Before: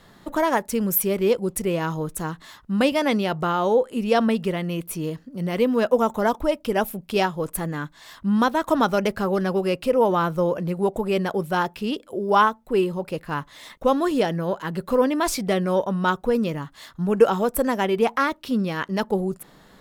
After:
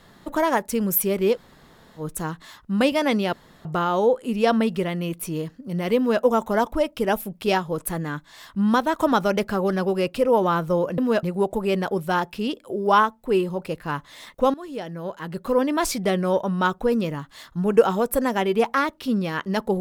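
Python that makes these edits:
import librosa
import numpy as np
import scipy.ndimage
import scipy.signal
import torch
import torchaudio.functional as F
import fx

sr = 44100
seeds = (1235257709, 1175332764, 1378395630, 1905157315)

y = fx.edit(x, sr, fx.room_tone_fill(start_s=1.35, length_s=0.66, crossfade_s=0.1),
    fx.insert_room_tone(at_s=3.33, length_s=0.32),
    fx.duplicate(start_s=5.65, length_s=0.25, to_s=10.66),
    fx.fade_in_from(start_s=13.97, length_s=1.22, floor_db=-18.5), tone=tone)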